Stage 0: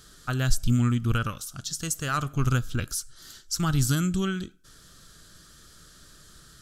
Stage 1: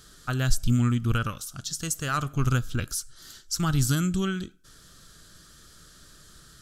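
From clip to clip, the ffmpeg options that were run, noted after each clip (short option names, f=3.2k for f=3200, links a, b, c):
-af anull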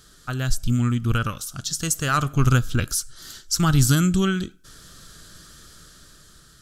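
-af "dynaudnorm=f=320:g=7:m=6.5dB"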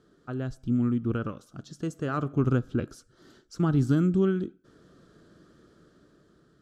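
-af "bandpass=f=350:t=q:w=1.3:csg=0,volume=2dB"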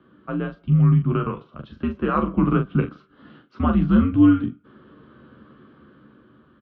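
-af "aecho=1:1:13|42:0.531|0.447,highpass=f=220:t=q:w=0.5412,highpass=f=220:t=q:w=1.307,lowpass=f=3.2k:t=q:w=0.5176,lowpass=f=3.2k:t=q:w=0.7071,lowpass=f=3.2k:t=q:w=1.932,afreqshift=-90,volume=8dB"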